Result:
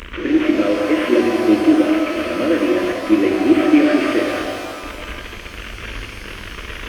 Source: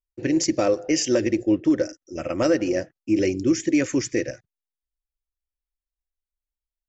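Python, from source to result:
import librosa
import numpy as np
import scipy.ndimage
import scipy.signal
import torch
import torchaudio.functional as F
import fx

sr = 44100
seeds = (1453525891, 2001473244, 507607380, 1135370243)

p1 = fx.delta_mod(x, sr, bps=16000, step_db=-24.5)
p2 = fx.fixed_phaser(p1, sr, hz=330.0, stages=4)
p3 = fx.level_steps(p2, sr, step_db=18)
p4 = p2 + F.gain(torch.from_numpy(p3), -1.5).numpy()
p5 = scipy.signal.sosfilt(scipy.signal.butter(2, 48.0, 'highpass', fs=sr, output='sos'), p4)
p6 = fx.peak_eq(p5, sr, hz=880.0, db=5.5, octaves=0.77)
p7 = fx.rev_shimmer(p6, sr, seeds[0], rt60_s=2.2, semitones=12, shimmer_db=-8, drr_db=1.5)
y = F.gain(torch.from_numpy(p7), 2.0).numpy()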